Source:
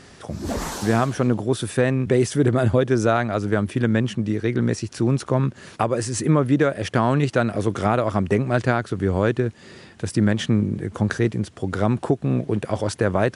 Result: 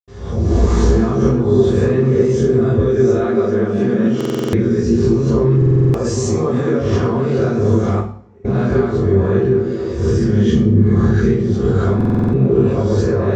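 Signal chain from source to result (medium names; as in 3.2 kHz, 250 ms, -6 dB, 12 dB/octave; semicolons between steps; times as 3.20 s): reverse spectral sustain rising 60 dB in 0.72 s; recorder AGC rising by 8 dB/s; 5.96–6.61 s: treble shelf 3.9 kHz +11 dB; compression, threshold -19 dBFS, peak gain reduction 9 dB; 3.09–4.26 s: high-pass 140 Hz 24 dB/octave; repeats whose band climbs or falls 193 ms, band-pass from 230 Hz, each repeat 0.7 oct, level -1 dB; 7.91–8.37 s: expander 0 dBFS; steep low-pass 8.4 kHz 96 dB/octave; reverberation, pre-delay 77 ms; buffer glitch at 4.16/5.57/11.96 s, samples 2048, times 7; trim +3.5 dB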